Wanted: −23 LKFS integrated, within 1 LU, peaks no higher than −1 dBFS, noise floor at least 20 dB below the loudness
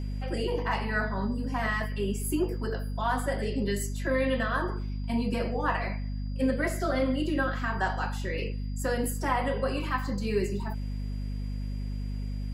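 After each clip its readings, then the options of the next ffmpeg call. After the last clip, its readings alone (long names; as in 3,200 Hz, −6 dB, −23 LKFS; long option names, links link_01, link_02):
mains hum 50 Hz; hum harmonics up to 250 Hz; level of the hum −30 dBFS; interfering tone 4,800 Hz; level of the tone −57 dBFS; integrated loudness −30.5 LKFS; sample peak −14.5 dBFS; target loudness −23.0 LKFS
→ -af "bandreject=frequency=50:width_type=h:width=4,bandreject=frequency=100:width_type=h:width=4,bandreject=frequency=150:width_type=h:width=4,bandreject=frequency=200:width_type=h:width=4,bandreject=frequency=250:width_type=h:width=4"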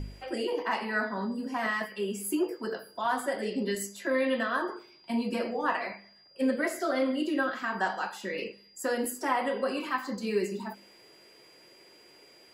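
mains hum none found; interfering tone 4,800 Hz; level of the tone −57 dBFS
→ -af "bandreject=frequency=4800:width=30"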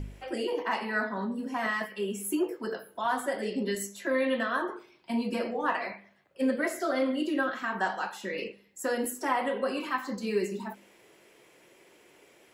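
interfering tone none found; integrated loudness −31.0 LKFS; sample peak −16.0 dBFS; target loudness −23.0 LKFS
→ -af "volume=8dB"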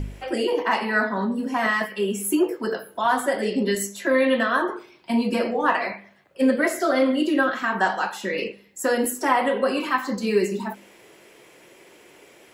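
integrated loudness −23.0 LKFS; sample peak −8.0 dBFS; background noise floor −52 dBFS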